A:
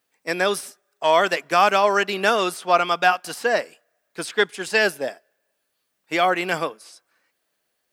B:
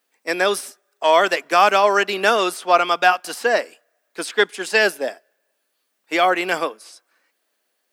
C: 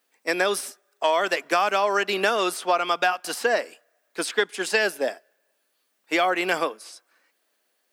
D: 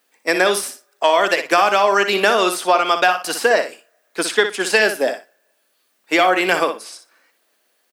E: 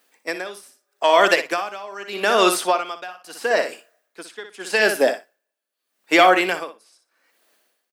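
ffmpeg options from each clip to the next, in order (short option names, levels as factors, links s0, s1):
-af "highpass=f=220:w=0.5412,highpass=f=220:w=1.3066,volume=1.33"
-af "acompressor=threshold=0.126:ratio=6"
-af "aecho=1:1:60|120:0.355|0.0568,volume=2.11"
-af "aeval=exprs='val(0)*pow(10,-22*(0.5-0.5*cos(2*PI*0.8*n/s))/20)':c=same,volume=1.26"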